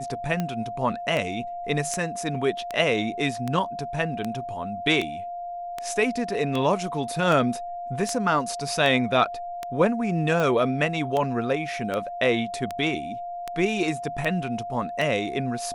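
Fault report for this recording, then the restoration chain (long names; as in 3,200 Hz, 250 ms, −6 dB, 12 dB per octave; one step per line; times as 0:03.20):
scratch tick 78 rpm −14 dBFS
whistle 700 Hz −31 dBFS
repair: click removal
notch filter 700 Hz, Q 30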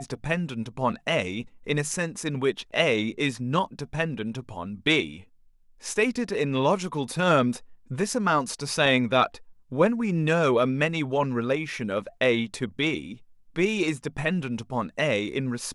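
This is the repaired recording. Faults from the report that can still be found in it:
none of them is left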